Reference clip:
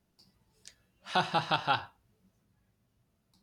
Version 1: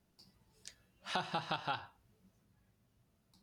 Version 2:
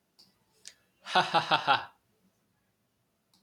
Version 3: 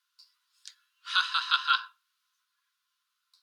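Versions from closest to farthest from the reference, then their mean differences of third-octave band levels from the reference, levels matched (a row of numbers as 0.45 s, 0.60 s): 2, 1, 3; 1.5 dB, 3.5 dB, 11.5 dB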